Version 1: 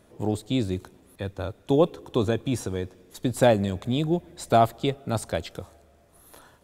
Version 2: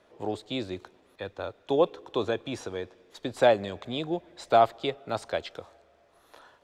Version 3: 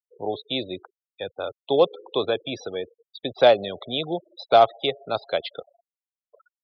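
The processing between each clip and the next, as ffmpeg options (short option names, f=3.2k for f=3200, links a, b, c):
-filter_complex "[0:a]acrossover=split=370 5600:gain=0.2 1 0.112[a][b][c];[a][b][c]amix=inputs=3:normalize=0"
-af "acrusher=bits=5:mode=log:mix=0:aa=0.000001,highpass=160,equalizer=f=220:t=q:w=4:g=-6,equalizer=f=320:t=q:w=4:g=-6,equalizer=f=960:t=q:w=4:g=-5,equalizer=f=1.7k:t=q:w=4:g=-5,equalizer=f=3.6k:t=q:w=4:g=4,lowpass=f=5.8k:w=0.5412,lowpass=f=5.8k:w=1.3066,afftfilt=real='re*gte(hypot(re,im),0.0112)':imag='im*gte(hypot(re,im),0.0112)':win_size=1024:overlap=0.75,volume=6dB"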